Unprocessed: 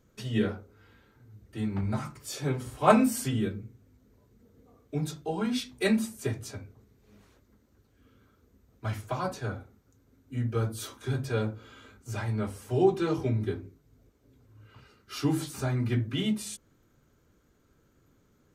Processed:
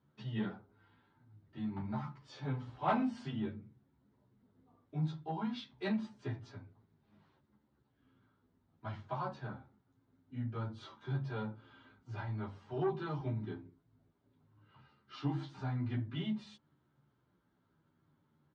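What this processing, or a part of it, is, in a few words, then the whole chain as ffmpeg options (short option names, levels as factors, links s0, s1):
barber-pole flanger into a guitar amplifier: -filter_complex "[0:a]asplit=2[s0][s1];[s1]adelay=10.8,afreqshift=-0.54[s2];[s0][s2]amix=inputs=2:normalize=1,asoftclip=type=tanh:threshold=0.1,highpass=100,equalizer=f=150:t=q:w=4:g=7,equalizer=f=470:t=q:w=4:g=-8,equalizer=f=900:t=q:w=4:g=8,equalizer=f=2400:t=q:w=4:g=-5,lowpass=f=4000:w=0.5412,lowpass=f=4000:w=1.3066,volume=0.531"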